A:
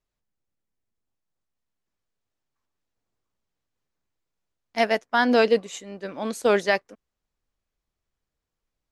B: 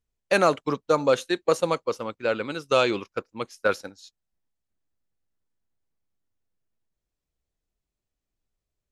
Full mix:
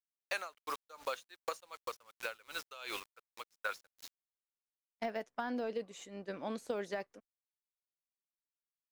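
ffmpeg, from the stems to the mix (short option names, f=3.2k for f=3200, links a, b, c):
-filter_complex "[0:a]agate=range=-33dB:threshold=-37dB:ratio=3:detection=peak,deesser=0.95,adelay=250,volume=-7.5dB[a];[1:a]highpass=1k,acrusher=bits=6:mix=0:aa=0.000001,aeval=exprs='val(0)*pow(10,-26*(0.5-0.5*cos(2*PI*2.7*n/s))/20)':c=same,volume=-1dB[b];[a][b]amix=inputs=2:normalize=0,acompressor=threshold=-34dB:ratio=12"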